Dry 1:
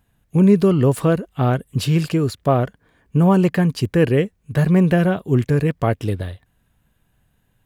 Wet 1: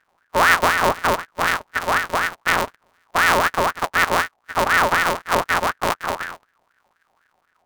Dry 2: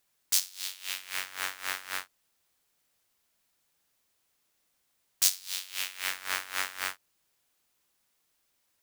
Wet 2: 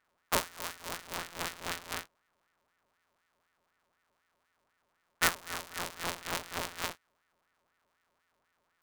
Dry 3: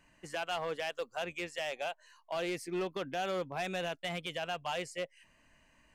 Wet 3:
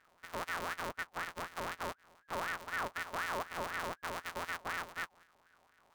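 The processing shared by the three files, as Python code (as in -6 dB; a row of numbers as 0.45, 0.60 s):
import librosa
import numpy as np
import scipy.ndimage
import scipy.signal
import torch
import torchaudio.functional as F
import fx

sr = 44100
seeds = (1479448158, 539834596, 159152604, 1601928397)

y = np.r_[np.sort(x[:len(x) // 256 * 256].reshape(-1, 256), axis=1).ravel(), x[len(x) // 256 * 256:]]
y = fx.ring_lfo(y, sr, carrier_hz=1200.0, swing_pct=40, hz=4.0)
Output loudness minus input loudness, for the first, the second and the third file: -1.0, -4.0, -2.5 LU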